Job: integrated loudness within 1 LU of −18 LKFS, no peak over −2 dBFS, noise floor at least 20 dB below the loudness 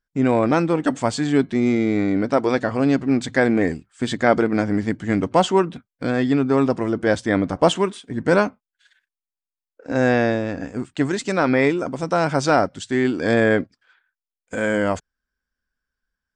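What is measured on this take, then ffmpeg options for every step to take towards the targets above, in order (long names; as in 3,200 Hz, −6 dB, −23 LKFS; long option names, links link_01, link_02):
integrated loudness −20.5 LKFS; sample peak −3.0 dBFS; target loudness −18.0 LKFS
→ -af "volume=2.5dB,alimiter=limit=-2dB:level=0:latency=1"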